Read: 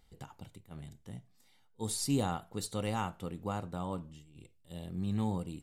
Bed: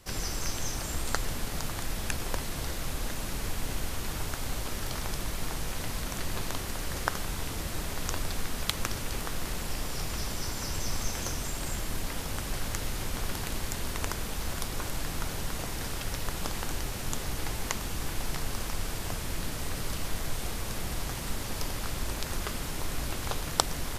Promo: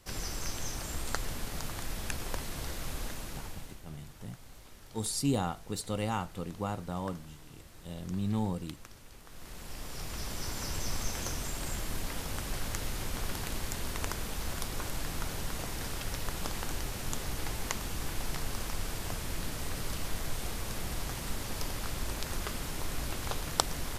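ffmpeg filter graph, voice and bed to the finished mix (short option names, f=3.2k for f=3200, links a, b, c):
-filter_complex "[0:a]adelay=3150,volume=1.5dB[a];[1:a]volume=12.5dB,afade=t=out:st=3:d=0.82:silence=0.177828,afade=t=in:st=9.24:d=1.33:silence=0.149624[b];[a][b]amix=inputs=2:normalize=0"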